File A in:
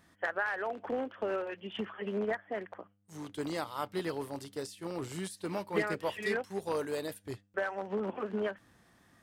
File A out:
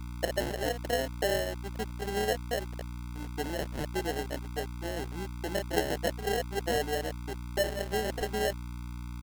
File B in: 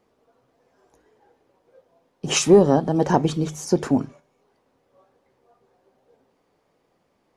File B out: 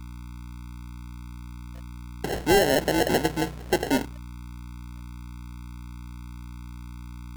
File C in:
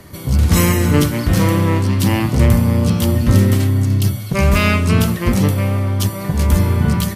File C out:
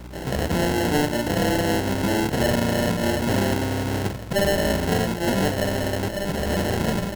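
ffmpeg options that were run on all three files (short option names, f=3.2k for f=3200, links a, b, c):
-filter_complex "[0:a]aresample=16000,acrusher=bits=2:mode=log:mix=0:aa=0.000001,aresample=44100,anlmdn=0.631,asplit=2[a][b];[b]acompressor=threshold=-23dB:ratio=4,volume=-1dB[c];[a][c]amix=inputs=2:normalize=0,bandpass=f=570:t=q:w=1.1:csg=0,aeval=exprs='val(0)+0.0141*(sin(2*PI*60*n/s)+sin(2*PI*2*60*n/s)/2+sin(2*PI*3*60*n/s)/3+sin(2*PI*4*60*n/s)/4+sin(2*PI*5*60*n/s)/5)':c=same,aemphasis=mode=reproduction:type=50fm,acrusher=samples=37:mix=1:aa=0.000001,volume=14.5dB,asoftclip=hard,volume=-14.5dB,volume=-1dB"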